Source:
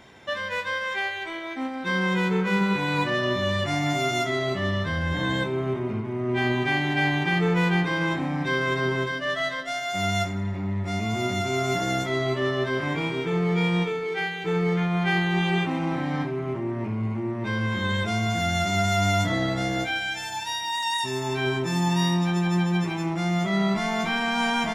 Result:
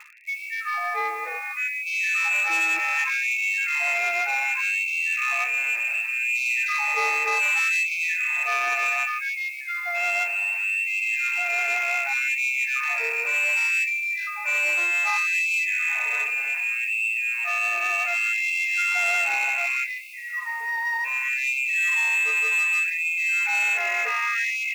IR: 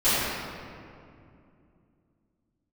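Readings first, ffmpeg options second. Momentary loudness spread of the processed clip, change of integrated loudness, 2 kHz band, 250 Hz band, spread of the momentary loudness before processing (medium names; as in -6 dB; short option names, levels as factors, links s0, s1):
7 LU, +3.5 dB, +7.5 dB, under -30 dB, 6 LU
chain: -filter_complex "[0:a]lowpass=f=2400:t=q:w=0.5098,lowpass=f=2400:t=q:w=0.6013,lowpass=f=2400:t=q:w=0.9,lowpass=f=2400:t=q:w=2.563,afreqshift=-2800,areverse,acompressor=mode=upward:threshold=0.0158:ratio=2.5,areverse,asoftclip=type=tanh:threshold=0.0794,asplit=2[s0][s1];[s1]acrusher=bits=6:mix=0:aa=0.000001,volume=0.531[s2];[s0][s2]amix=inputs=2:normalize=0,bandreject=f=60:t=h:w=6,bandreject=f=120:t=h:w=6,bandreject=f=180:t=h:w=6,bandreject=f=240:t=h:w=6,bandreject=f=300:t=h:w=6,afftfilt=real='re*gte(b*sr/1024,290*pow(2100/290,0.5+0.5*sin(2*PI*0.66*pts/sr)))':imag='im*gte(b*sr/1024,290*pow(2100/290,0.5+0.5*sin(2*PI*0.66*pts/sr)))':win_size=1024:overlap=0.75"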